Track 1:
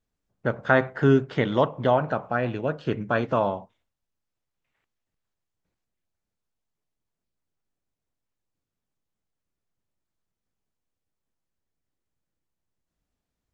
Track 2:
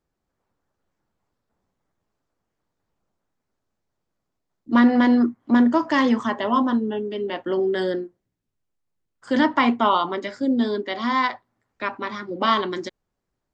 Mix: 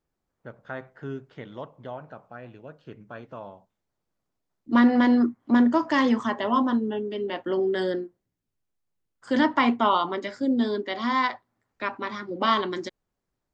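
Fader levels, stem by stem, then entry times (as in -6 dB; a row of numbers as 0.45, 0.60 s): -16.5, -2.5 dB; 0.00, 0.00 s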